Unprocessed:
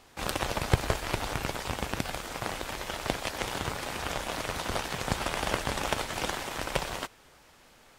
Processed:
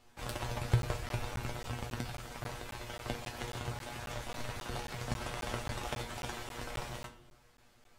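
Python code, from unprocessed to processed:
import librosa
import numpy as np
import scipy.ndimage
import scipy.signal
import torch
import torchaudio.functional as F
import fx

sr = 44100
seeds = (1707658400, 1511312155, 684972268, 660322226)

y = fx.low_shelf(x, sr, hz=150.0, db=9.0)
y = fx.comb_fb(y, sr, f0_hz=120.0, decay_s=0.17, harmonics='all', damping=0.0, mix_pct=90)
y = fx.room_shoebox(y, sr, seeds[0], volume_m3=170.0, walls='mixed', distance_m=0.32)
y = fx.buffer_crackle(y, sr, first_s=0.82, period_s=0.27, block=512, kind='zero')
y = F.gain(torch.from_numpy(y), -2.5).numpy()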